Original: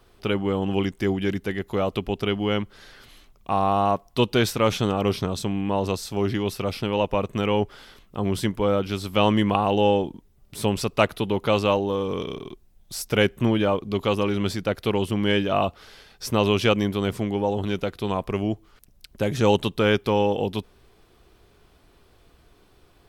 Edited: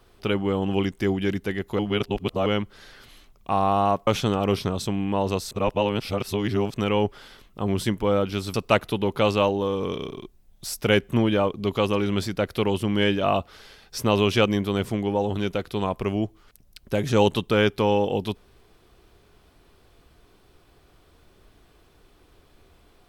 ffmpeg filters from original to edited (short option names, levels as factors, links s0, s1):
-filter_complex "[0:a]asplit=7[s0][s1][s2][s3][s4][s5][s6];[s0]atrim=end=1.792[s7];[s1]atrim=start=1.788:end=2.462,asetpts=PTS-STARTPTS,areverse[s8];[s2]atrim=start=2.458:end=4.072[s9];[s3]atrim=start=4.638:end=6.082[s10];[s4]atrim=start=6.078:end=7.312,asetpts=PTS-STARTPTS,areverse[s11];[s5]atrim=start=7.308:end=9.112[s12];[s6]atrim=start=10.818[s13];[s7][s8]acrossfade=d=0.004:c1=hsin:c2=hsin[s14];[s14][s9]acrossfade=d=0.004:c1=hsin:c2=hsin[s15];[s15][s10]acrossfade=d=0.004:c1=hsin:c2=hsin[s16];[s16][s11]acrossfade=d=0.004:c1=hsin:c2=hsin[s17];[s17][s12]acrossfade=d=0.004:c1=hsin:c2=hsin[s18];[s18][s13]acrossfade=d=0.004:c1=hsin:c2=hsin"